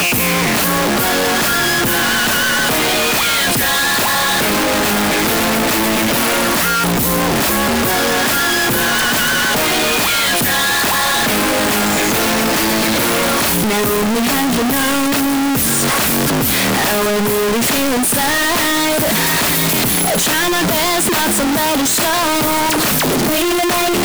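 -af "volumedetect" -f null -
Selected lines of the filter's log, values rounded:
mean_volume: -14.9 dB
max_volume: -14.9 dB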